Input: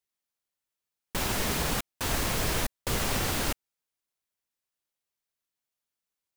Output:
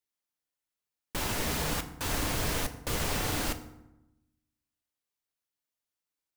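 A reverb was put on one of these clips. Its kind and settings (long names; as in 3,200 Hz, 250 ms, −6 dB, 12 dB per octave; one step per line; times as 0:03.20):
feedback delay network reverb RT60 0.91 s, low-frequency decay 1.4×, high-frequency decay 0.6×, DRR 7.5 dB
level −3 dB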